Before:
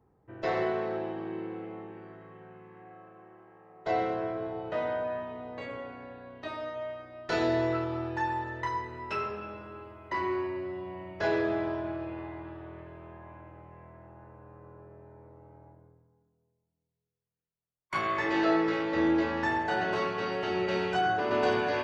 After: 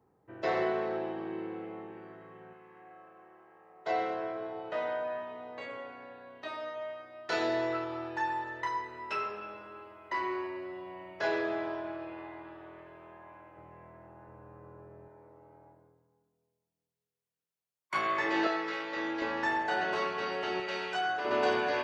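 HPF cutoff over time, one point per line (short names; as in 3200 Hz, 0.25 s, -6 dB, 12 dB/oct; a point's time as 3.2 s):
HPF 6 dB/oct
200 Hz
from 2.53 s 540 Hz
from 13.57 s 180 Hz
from 14.28 s 82 Hz
from 15.08 s 340 Hz
from 18.47 s 1200 Hz
from 19.22 s 470 Hz
from 20.6 s 1100 Hz
from 21.25 s 350 Hz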